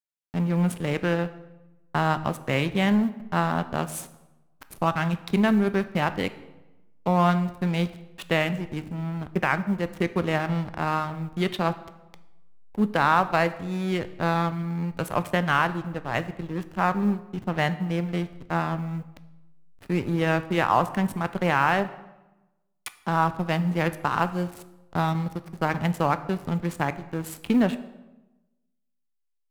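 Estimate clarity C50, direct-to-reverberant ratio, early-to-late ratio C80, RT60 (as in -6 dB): 15.0 dB, 11.5 dB, 17.0 dB, 1.0 s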